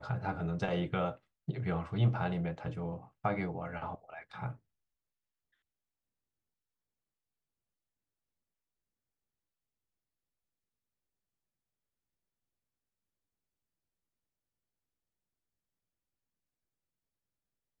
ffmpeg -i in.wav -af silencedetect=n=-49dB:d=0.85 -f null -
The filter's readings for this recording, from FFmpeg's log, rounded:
silence_start: 4.56
silence_end: 17.80 | silence_duration: 13.24